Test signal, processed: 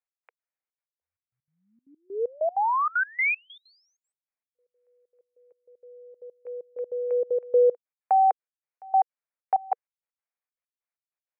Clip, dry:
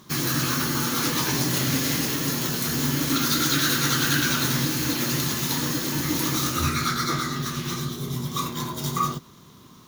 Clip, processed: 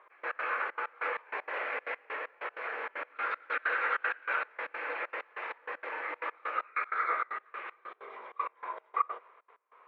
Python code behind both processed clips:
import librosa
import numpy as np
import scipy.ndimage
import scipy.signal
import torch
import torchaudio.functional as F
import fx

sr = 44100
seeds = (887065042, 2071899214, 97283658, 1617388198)

y = scipy.signal.sosfilt(scipy.signal.cheby1(4, 1.0, [470.0, 2400.0], 'bandpass', fs=sr, output='sos'), x)
y = fx.step_gate(y, sr, bpm=193, pattern='x..x.xxxx.x..x', floor_db=-24.0, edge_ms=4.5)
y = y * librosa.db_to_amplitude(-1.0)